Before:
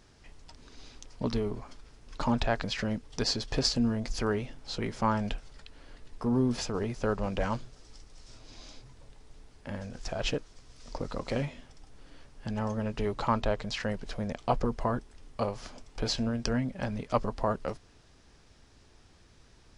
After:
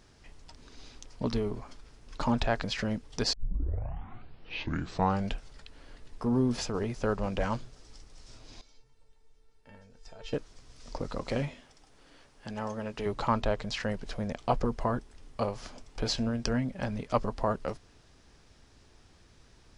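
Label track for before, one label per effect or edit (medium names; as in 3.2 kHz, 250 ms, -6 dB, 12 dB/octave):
3.330000	3.330000	tape start 2.01 s
8.610000	10.330000	feedback comb 450 Hz, decay 0.2 s, mix 90%
11.540000	13.060000	bass shelf 190 Hz -11.5 dB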